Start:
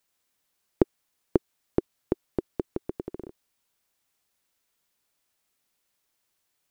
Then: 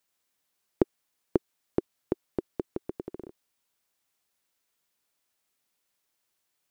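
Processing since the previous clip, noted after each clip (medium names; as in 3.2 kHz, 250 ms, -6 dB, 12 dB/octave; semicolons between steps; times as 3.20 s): bass shelf 97 Hz -6 dB; trim -2 dB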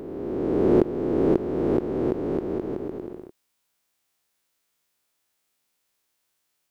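reverse spectral sustain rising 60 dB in 2.19 s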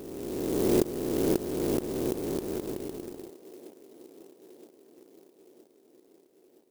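feedback echo behind a band-pass 968 ms, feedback 60%, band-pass 520 Hz, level -18 dB; sampling jitter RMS 0.085 ms; trim -5.5 dB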